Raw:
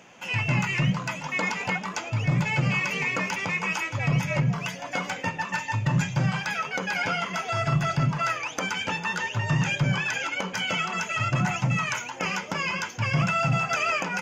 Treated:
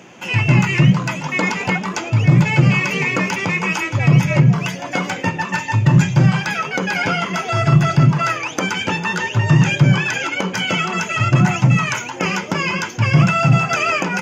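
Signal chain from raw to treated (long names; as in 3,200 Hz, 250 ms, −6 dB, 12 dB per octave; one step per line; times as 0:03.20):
high-pass filter 84 Hz
bass and treble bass +6 dB, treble 0 dB
hollow resonant body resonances 350 Hz, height 8 dB, ringing for 30 ms
level +7 dB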